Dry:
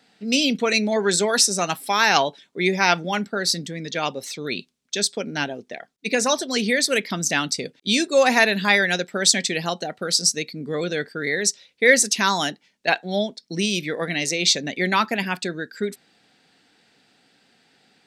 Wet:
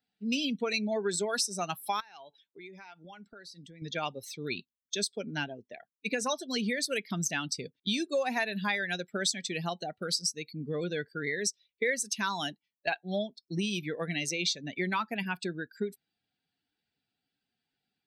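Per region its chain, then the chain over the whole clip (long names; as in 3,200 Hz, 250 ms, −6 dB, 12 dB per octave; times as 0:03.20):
0:02.00–0:03.82: low-pass filter 11,000 Hz + low-shelf EQ 180 Hz −9 dB + downward compressor 5 to 1, threshold −35 dBFS
whole clip: spectral dynamics exaggerated over time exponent 1.5; notch filter 7,000 Hz, Q 13; downward compressor 4 to 1, threshold −29 dBFS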